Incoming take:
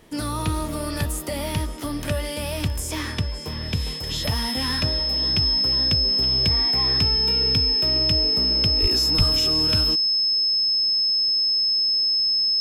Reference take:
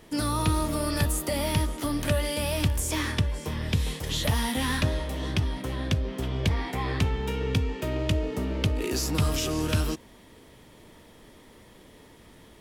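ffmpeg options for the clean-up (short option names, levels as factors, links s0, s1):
-filter_complex "[0:a]bandreject=f=5200:w=30,asplit=3[s0][s1][s2];[s0]afade=t=out:st=8.81:d=0.02[s3];[s1]highpass=f=140:w=0.5412,highpass=f=140:w=1.3066,afade=t=in:st=8.81:d=0.02,afade=t=out:st=8.93:d=0.02[s4];[s2]afade=t=in:st=8.93:d=0.02[s5];[s3][s4][s5]amix=inputs=3:normalize=0,asplit=3[s6][s7][s8];[s6]afade=t=out:st=9.17:d=0.02[s9];[s7]highpass=f=140:w=0.5412,highpass=f=140:w=1.3066,afade=t=in:st=9.17:d=0.02,afade=t=out:st=9.29:d=0.02[s10];[s8]afade=t=in:st=9.29:d=0.02[s11];[s9][s10][s11]amix=inputs=3:normalize=0"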